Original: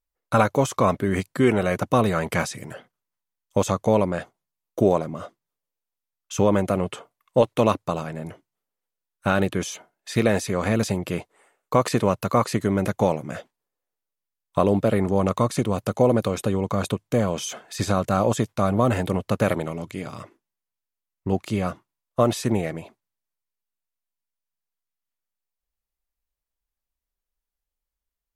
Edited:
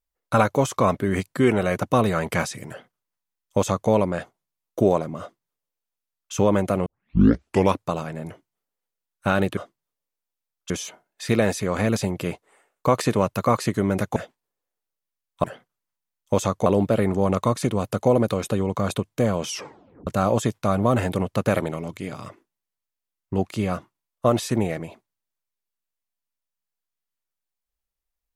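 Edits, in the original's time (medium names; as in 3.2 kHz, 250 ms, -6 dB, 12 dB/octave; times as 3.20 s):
2.68–3.90 s: copy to 14.60 s
5.20–6.33 s: copy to 9.57 s
6.86 s: tape start 0.91 s
13.03–13.32 s: delete
17.42 s: tape stop 0.59 s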